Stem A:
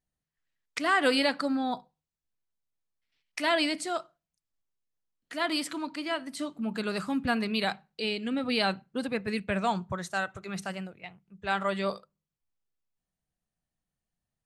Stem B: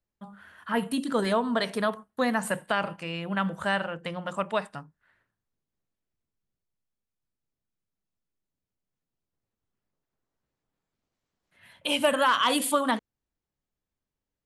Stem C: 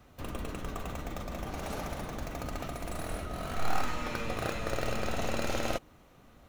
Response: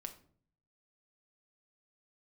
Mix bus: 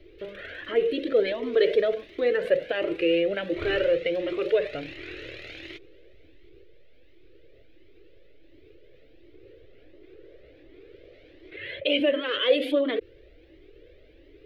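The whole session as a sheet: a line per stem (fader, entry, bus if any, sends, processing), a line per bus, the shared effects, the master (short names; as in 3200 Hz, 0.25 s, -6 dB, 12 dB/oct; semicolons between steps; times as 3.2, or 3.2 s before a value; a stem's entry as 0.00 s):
off
-2.0 dB, 0.00 s, no send, graphic EQ 125/500/8000 Hz -4/+11/-10 dB; fast leveller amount 50%
-8.5 dB, 0.00 s, no send, spectral limiter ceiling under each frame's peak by 28 dB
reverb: off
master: EQ curve 120 Hz 0 dB, 210 Hz -15 dB, 330 Hz +12 dB, 580 Hz 0 dB, 910 Hz -22 dB, 2100 Hz +5 dB, 3700 Hz +1 dB, 7500 Hz -24 dB; cascading flanger rising 1.4 Hz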